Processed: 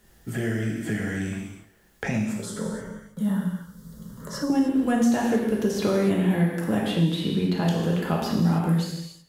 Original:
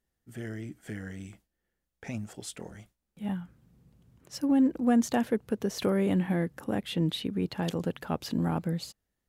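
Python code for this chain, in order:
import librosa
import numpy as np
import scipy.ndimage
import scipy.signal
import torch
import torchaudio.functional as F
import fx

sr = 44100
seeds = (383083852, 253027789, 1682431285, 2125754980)

y = fx.fixed_phaser(x, sr, hz=500.0, stages=8, at=(2.29, 4.5))
y = y + 10.0 ** (-22.5 / 20.0) * np.pad(y, (int(166 * sr / 1000.0), 0))[:len(y)]
y = fx.rev_gated(y, sr, seeds[0], gate_ms=330, shape='falling', drr_db=-3.0)
y = fx.band_squash(y, sr, depth_pct=70)
y = y * librosa.db_to_amplitude(1.0)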